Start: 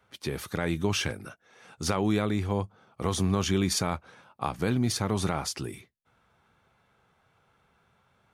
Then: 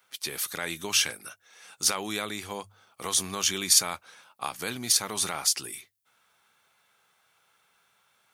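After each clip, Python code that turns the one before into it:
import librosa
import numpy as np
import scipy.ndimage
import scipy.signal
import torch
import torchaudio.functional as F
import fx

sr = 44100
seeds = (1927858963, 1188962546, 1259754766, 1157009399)

y = fx.tilt_eq(x, sr, slope=4.5)
y = fx.hum_notches(y, sr, base_hz=50, count=2)
y = F.gain(torch.from_numpy(y), -2.0).numpy()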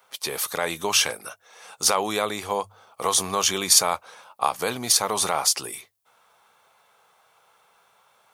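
y = fx.band_shelf(x, sr, hz=710.0, db=8.5, octaves=1.7)
y = F.gain(torch.from_numpy(y), 3.5).numpy()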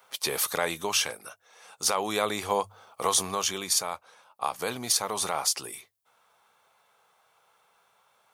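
y = fx.rider(x, sr, range_db=5, speed_s=0.5)
y = F.gain(torch.from_numpy(y), -4.5).numpy()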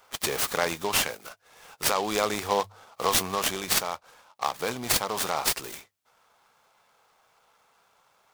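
y = fx.noise_mod_delay(x, sr, seeds[0], noise_hz=3200.0, depth_ms=0.042)
y = F.gain(torch.from_numpy(y), 1.5).numpy()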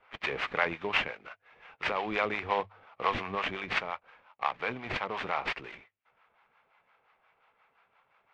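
y = fx.harmonic_tremolo(x, sr, hz=5.7, depth_pct=70, crossover_hz=580.0)
y = fx.ladder_lowpass(y, sr, hz=2800.0, resonance_pct=45)
y = F.gain(torch.from_numpy(y), 7.0).numpy()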